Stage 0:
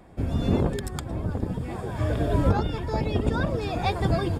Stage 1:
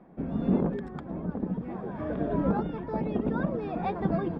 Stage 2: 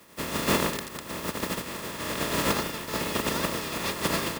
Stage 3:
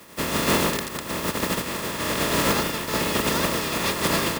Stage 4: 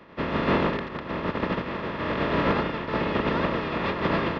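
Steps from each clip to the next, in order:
low-pass filter 1,600 Hz 12 dB per octave; low shelf with overshoot 140 Hz −8.5 dB, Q 3; level −4 dB
compressing power law on the bin magnitudes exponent 0.25; notch comb filter 760 Hz; level +1.5 dB
soft clipping −22 dBFS, distortion −13 dB; level +7 dB
Gaussian smoothing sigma 3 samples

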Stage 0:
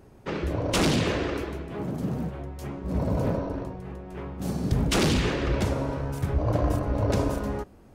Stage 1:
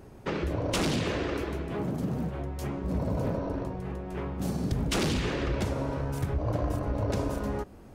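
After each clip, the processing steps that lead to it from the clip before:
downward compressor 2.5 to 1, threshold −32 dBFS, peak gain reduction 9 dB
level +3 dB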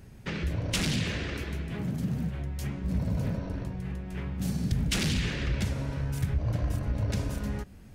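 flat-topped bell 600 Hz −10.5 dB 2.5 octaves
level +2 dB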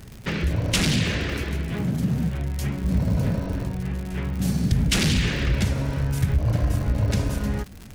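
surface crackle 110 per second −37 dBFS
level +7 dB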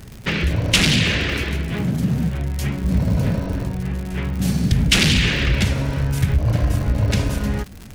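dynamic equaliser 2,800 Hz, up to +6 dB, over −42 dBFS, Q 0.94
level +3.5 dB

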